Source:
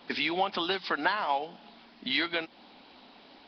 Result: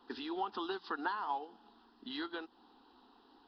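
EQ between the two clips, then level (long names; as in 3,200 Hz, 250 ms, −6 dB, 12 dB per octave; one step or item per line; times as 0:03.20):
bass and treble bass +1 dB, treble −11 dB
high-shelf EQ 5,200 Hz +4.5 dB
phaser with its sweep stopped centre 600 Hz, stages 6
−6.0 dB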